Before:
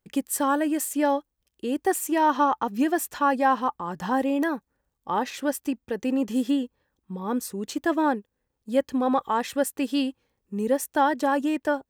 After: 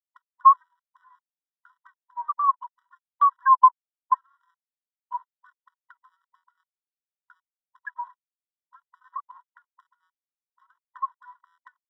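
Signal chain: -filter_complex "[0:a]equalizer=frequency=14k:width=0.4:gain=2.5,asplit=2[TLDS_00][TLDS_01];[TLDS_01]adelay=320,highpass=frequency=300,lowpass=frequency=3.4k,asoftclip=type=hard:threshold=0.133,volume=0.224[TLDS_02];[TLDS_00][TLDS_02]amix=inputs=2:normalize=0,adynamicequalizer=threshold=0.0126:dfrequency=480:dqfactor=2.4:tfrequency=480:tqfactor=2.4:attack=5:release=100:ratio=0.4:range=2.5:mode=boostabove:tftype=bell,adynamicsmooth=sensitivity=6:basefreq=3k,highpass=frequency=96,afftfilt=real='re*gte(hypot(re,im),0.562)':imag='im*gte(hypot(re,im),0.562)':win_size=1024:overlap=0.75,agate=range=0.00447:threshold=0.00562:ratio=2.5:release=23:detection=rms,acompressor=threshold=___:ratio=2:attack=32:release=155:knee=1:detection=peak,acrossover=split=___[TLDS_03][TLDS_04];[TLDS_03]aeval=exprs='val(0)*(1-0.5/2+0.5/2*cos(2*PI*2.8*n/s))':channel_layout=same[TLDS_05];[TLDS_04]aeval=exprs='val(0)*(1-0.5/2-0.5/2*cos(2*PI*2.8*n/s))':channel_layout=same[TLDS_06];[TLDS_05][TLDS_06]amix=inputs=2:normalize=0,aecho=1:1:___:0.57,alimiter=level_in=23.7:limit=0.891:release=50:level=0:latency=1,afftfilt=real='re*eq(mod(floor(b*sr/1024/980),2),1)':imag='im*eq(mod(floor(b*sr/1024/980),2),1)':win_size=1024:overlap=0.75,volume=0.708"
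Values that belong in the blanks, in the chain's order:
0.0158, 790, 2.1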